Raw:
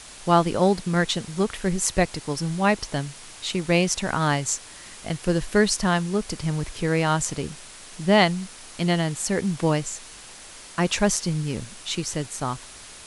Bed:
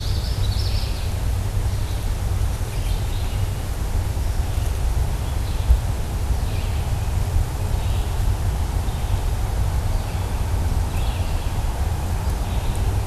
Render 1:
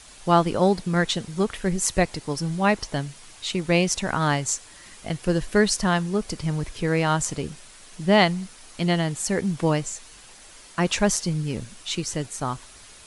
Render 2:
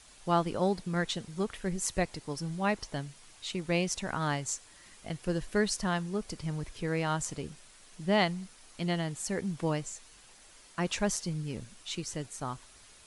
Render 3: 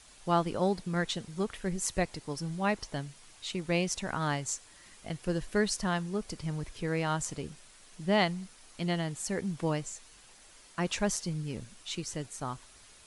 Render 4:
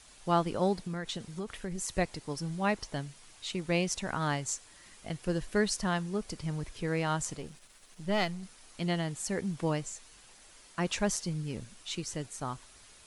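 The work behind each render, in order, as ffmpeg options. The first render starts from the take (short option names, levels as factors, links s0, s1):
-af "afftdn=nr=6:nf=-44"
-af "volume=0.355"
-af anull
-filter_complex "[0:a]asettb=1/sr,asplit=3[s0][s1][s2];[s0]atrim=end=0.814[s3];[s1]atrim=start=0.81:end=1.89,asetpts=PTS-STARTPTS,afade=t=in:d=0.004:c=qsin,afade=t=out:st=1.076:d=0.004:c=qsin,acompressor=threshold=0.0251:ratio=6:attack=3.2:release=140:knee=1:detection=peak[s4];[s2]atrim=start=1.886[s5];[s3][s4]acrossfade=d=0.004:c1=hsin:c2=qsin[s6];[s6][s5]acrossfade=d=0.004:c1=qsin:c2=hsin,asettb=1/sr,asplit=3[s7][s8][s9];[s7]atrim=end=7.374[s10];[s8]atrim=start=7.37:end=8.43,asetpts=PTS-STARTPTS,afade=t=in:d=0.004:c=qsin,afade=t=out:st=1.056:d=0.004:c=qsin,aeval=exprs='if(lt(val(0),0),0.447*val(0),val(0))':c=same[s11];[s9]atrim=start=8.426[s12];[s10][s11]acrossfade=d=0.004:c1=hsin:c2=qsin[s13];[s13][s12]acrossfade=d=0.004:c1=qsin:c2=hsin"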